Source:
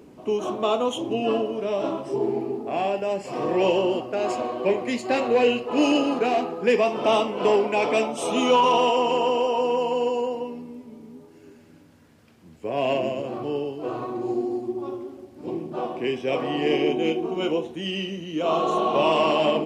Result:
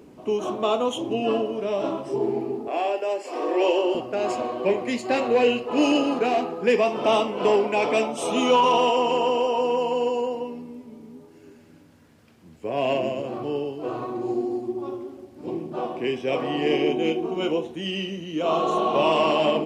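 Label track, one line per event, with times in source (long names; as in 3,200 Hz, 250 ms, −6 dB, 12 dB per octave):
2.680000	3.950000	Butterworth high-pass 280 Hz 48 dB per octave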